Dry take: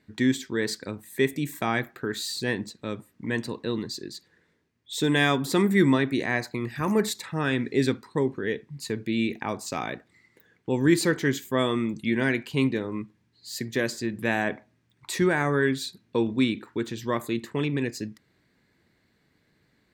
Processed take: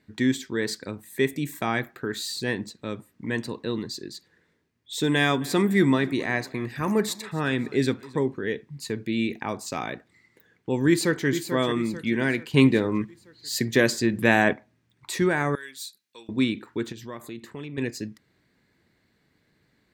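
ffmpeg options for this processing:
-filter_complex "[0:a]asplit=3[a][b][c];[a]afade=t=out:st=5.29:d=0.02[d];[b]aecho=1:1:267|534|801:0.0841|0.037|0.0163,afade=t=in:st=5.29:d=0.02,afade=t=out:st=8.24:d=0.02[e];[c]afade=t=in:st=8.24:d=0.02[f];[d][e][f]amix=inputs=3:normalize=0,asplit=2[g][h];[h]afade=t=in:st=10.88:d=0.01,afade=t=out:st=11.28:d=0.01,aecho=0:1:440|880|1320|1760|2200:0.354813|0.159666|0.0718497|0.0323324|0.0145496[i];[g][i]amix=inputs=2:normalize=0,asettb=1/sr,asplit=3[j][k][l];[j]atrim=end=15.554[m];[k]atrim=start=15.55:end=16.29,asetpts=PTS-STARTPTS,afade=t=in:d=0.004:c=qsin,afade=t=out:st=0.736:d=0.004:c=qsin,aderivative[n];[l]atrim=start=16.286[o];[m][n]acrossfade=d=0.004:c1=hsin:c2=qsin[p];[p][o]acrossfade=d=0.004:c1=qsin:c2=hsin,asettb=1/sr,asplit=3[q][r][s];[q]atrim=end=16.924[t];[r]atrim=start=16.92:end=17.78,asetpts=PTS-STARTPTS,afade=t=in:d=0.004:c=qsin,afade=t=out:st=0.856:d=0.004:c=qsin,acompressor=threshold=-41dB:ratio=2:attack=3.2:release=140:knee=1:detection=peak[u];[s]atrim=start=17.776[v];[t][u]acrossfade=d=0.004:c1=hsin:c2=qsin[w];[w][v]acrossfade=d=0.004:c1=qsin:c2=hsin,asplit=3[x][y][z];[x]atrim=end=12.542[aa];[y]atrim=start=12.538:end=14.532,asetpts=PTS-STARTPTS,volume=6.5dB[ab];[z]atrim=start=14.528[ac];[aa][ab]acrossfade=d=0.004:c1=hsin:c2=hsin[ad];[ad][ac]acrossfade=d=0.004:c1=hsin:c2=hsin"

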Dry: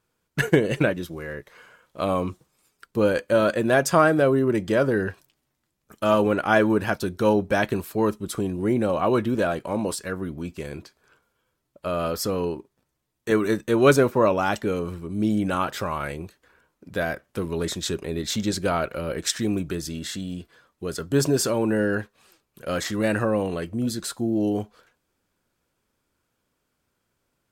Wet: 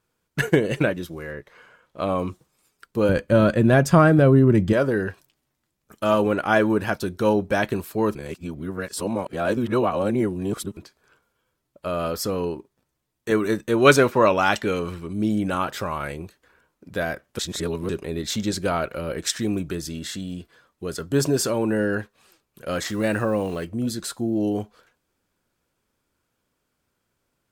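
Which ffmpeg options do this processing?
-filter_complex "[0:a]asettb=1/sr,asplit=3[a][b][c];[a]atrim=end=1.314[d];[b]atrim=start=1.31:end=2.19,asetpts=PTS-STARTPTS,afade=t=in:d=0.004:c=qsin,afade=t=out:st=0.876:d=0.004:c=qsin,highshelf=f=5.6k:g=-9[e];[c]atrim=start=2.186[f];[d][e]acrossfade=d=0.004:c1=hsin:c2=qsin[g];[g][f]acrossfade=d=0.004:c1=qsin:c2=hsin,asettb=1/sr,asplit=3[h][i][j];[h]atrim=end=3.094[k];[i]atrim=start=3.09:end=4.73,asetpts=PTS-STARTPTS,afade=t=in:d=0.004:c=qsin,afade=t=out:st=1.636:d=0.004:c=qsin,bass=f=250:g=13,treble=f=4k:g=-4[l];[j]atrim=start=4.726[m];[k][l]acrossfade=d=0.004:c1=hsin:c2=qsin[n];[n][m]acrossfade=d=0.004:c1=qsin:c2=hsin,asettb=1/sr,asplit=3[o][p][q];[o]atrim=end=13.854[r];[p]atrim=start=13.85:end=15.13,asetpts=PTS-STARTPTS,afade=t=in:d=0.004:c=qsin,afade=t=out:st=1.276:d=0.004:c=qsin,equalizer=f=2.8k:w=0.4:g=7.5[s];[q]atrim=start=15.126[t];[r][s]acrossfade=d=0.004:c1=hsin:c2=qsin[u];[u][t]acrossfade=d=0.004:c1=qsin:c2=hsin,asettb=1/sr,asplit=3[v][w][x];[v]atrim=end=22.874[y];[w]atrim=start=22.87:end=23.65,asetpts=PTS-STARTPTS,afade=t=in:d=0.004:c=qsin,afade=t=out:st=0.776:d=0.004:c=qsin,acrusher=bits=7:mix=0:aa=0.5[z];[x]atrim=start=23.646[aa];[y][z]acrossfade=d=0.004:c1=hsin:c2=qsin[ab];[ab][aa]acrossfade=d=0.004:c1=qsin:c2=hsin,asplit=5[ac][ad][ae][af][ag];[ac]atrim=end=8.152[ah];[ad]atrim=start=8.148:end=10.772,asetpts=PTS-STARTPTS,areverse[ai];[ae]atrim=start=10.768:end=17.392[aj];[af]atrim=start=17.388:end=17.892,asetpts=PTS-STARTPTS,areverse[ak];[ag]atrim=start=17.888[al];[ah][ai]acrossfade=d=0.004:c1=hsin:c2=hsin[am];[am][aj]acrossfade=d=0.004:c1=hsin:c2=hsin[an];[an][ak]acrossfade=d=0.004:c1=hsin:c2=hsin[ao];[ao][al]acrossfade=d=0.004:c1=hsin:c2=hsin"

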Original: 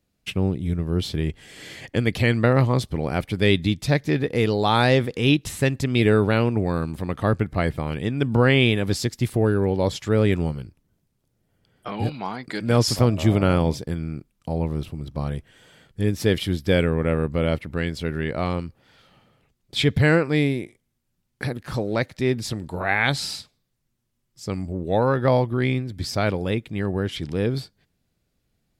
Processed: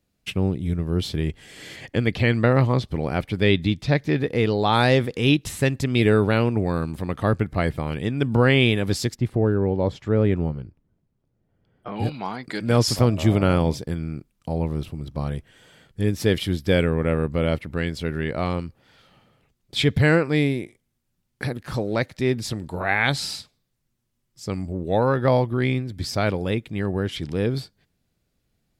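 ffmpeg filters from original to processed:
-filter_complex "[0:a]asettb=1/sr,asplit=3[a][b][c];[a]atrim=end=1.764[d];[b]atrim=start=1.76:end=4.73,asetpts=PTS-STARTPTS,afade=t=in:d=0.004:c=qsin,afade=t=out:st=2.966:d=0.004:c=qsin,acrossover=split=5100[e][f];[f]acompressor=threshold=-54dB:ratio=4:attack=1:release=60[g];[e][g]amix=inputs=2:normalize=0[h];[c]atrim=start=4.726[i];[d][h]acrossfade=d=0.004:c1=hsin:c2=qsin[j];[j][i]acrossfade=d=0.004:c1=qsin:c2=hsin,asettb=1/sr,asplit=3[k][l][m];[k]atrim=end=9.154[n];[l]atrim=start=9.15:end=11.96,asetpts=PTS-STARTPTS,afade=t=in:d=0.004:c=qsin,afade=t=out:st=2.806:d=0.004:c=qsin,lowpass=f=1.1k:p=1[o];[m]atrim=start=11.956[p];[n][o]acrossfade=d=0.004:c1=hsin:c2=qsin[q];[q][p]acrossfade=d=0.004:c1=qsin:c2=hsin"

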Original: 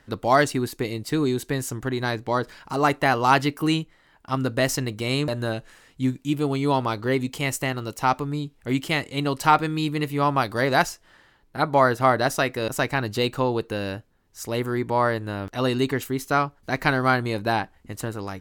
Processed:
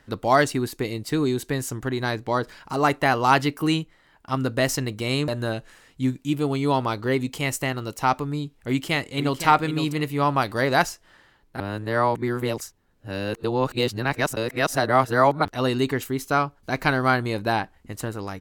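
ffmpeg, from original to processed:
-filter_complex "[0:a]asplit=2[a][b];[b]afade=t=in:st=8.43:d=0.01,afade=t=out:st=9.41:d=0.01,aecho=0:1:510|1020|1530:0.354813|0.0887033|0.0221758[c];[a][c]amix=inputs=2:normalize=0,asettb=1/sr,asplit=3[d][e][f];[d]atrim=end=16.224[g];[e]atrim=start=16.22:end=16.9,asetpts=PTS-STARTPTS,afade=t=in:d=0.004:c=qsin,afade=t=out:st=0.676:d=0.004:c=qsin,bandreject=f=1.9k:w=12[h];[f]atrim=start=16.896[i];[g][h]acrossfade=d=0.004:c1=hsin:c2=qsin[j];[j][i]acrossfade=d=0.004:c1=qsin:c2=hsin,asplit=3[k][l][m];[k]atrim=end=11.602[n];[l]atrim=start=11.598:end=15.452,asetpts=PTS-STARTPTS,areverse[o];[m]atrim=start=15.448[p];[n][o]acrossfade=d=0.004:c1=hsin:c2=hsin[q];[q][p]acrossfade=d=0.004:c1=hsin:c2=hsin"

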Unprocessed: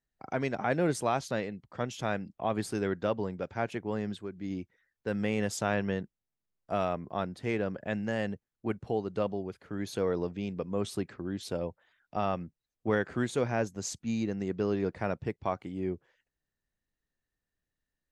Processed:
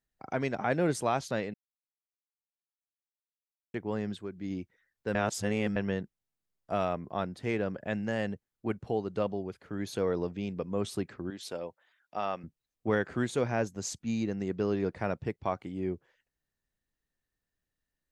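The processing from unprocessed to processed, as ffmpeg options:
-filter_complex "[0:a]asettb=1/sr,asplit=3[a][b][c];[a]atrim=end=11.304[d];[b]atrim=start=11.3:end=12.44,asetpts=PTS-STARTPTS,afade=t=in:d=0.004:c=qsin,afade=t=out:st=1.136:d=0.004:c=qsin,highpass=f=560:p=1[e];[c]atrim=start=12.436[f];[d][e]acrossfade=d=0.004:c1=hsin:c2=qsin[g];[g][f]acrossfade=d=0.004:c1=qsin:c2=hsin,asplit=5[h][i][j][k][l];[h]atrim=end=1.54,asetpts=PTS-STARTPTS,afade=t=out:st=1.536:d=0.004:c=hsin[m];[i]atrim=start=1.54:end=3.74,asetpts=PTS-STARTPTS,volume=0[n];[j]atrim=start=3.74:end=5.152,asetpts=PTS-STARTPTS,afade=t=in:d=0.004:c=hsin[o];[k]atrim=start=5.148:end=5.762,asetpts=PTS-STARTPTS,areverse[p];[l]atrim=start=5.758[q];[m][n][o]concat=n=3:v=0:a=1[r];[r][p]acrossfade=d=0.004:c1=hsin:c2=hsin[s];[s][q]acrossfade=d=0.004:c1=hsin:c2=hsin"

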